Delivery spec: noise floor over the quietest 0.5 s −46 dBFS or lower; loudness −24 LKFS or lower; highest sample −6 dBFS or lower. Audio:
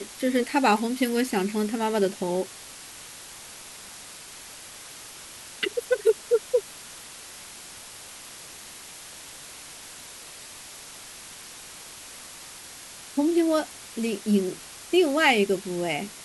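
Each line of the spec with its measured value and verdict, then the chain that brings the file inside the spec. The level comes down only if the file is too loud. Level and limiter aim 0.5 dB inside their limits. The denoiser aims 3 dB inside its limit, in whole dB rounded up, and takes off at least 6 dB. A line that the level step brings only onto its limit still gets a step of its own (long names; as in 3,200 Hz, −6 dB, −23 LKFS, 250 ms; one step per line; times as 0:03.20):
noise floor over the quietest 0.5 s −43 dBFS: out of spec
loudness −25.0 LKFS: in spec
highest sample −7.5 dBFS: in spec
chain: broadband denoise 6 dB, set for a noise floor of −43 dBFS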